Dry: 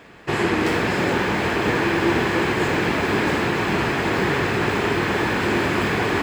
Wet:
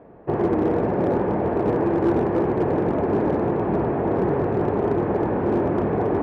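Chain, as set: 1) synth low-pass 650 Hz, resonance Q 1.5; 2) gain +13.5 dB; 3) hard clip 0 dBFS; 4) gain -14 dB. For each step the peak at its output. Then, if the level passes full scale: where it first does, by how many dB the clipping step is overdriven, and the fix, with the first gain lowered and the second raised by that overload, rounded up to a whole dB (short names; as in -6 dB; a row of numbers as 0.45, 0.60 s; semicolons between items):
-7.0, +6.5, 0.0, -14.0 dBFS; step 2, 6.5 dB; step 2 +6.5 dB, step 4 -7 dB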